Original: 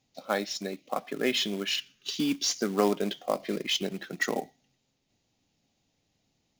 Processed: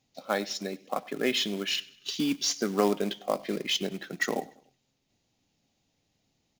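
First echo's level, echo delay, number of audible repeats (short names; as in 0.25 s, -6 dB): -23.0 dB, 98 ms, 2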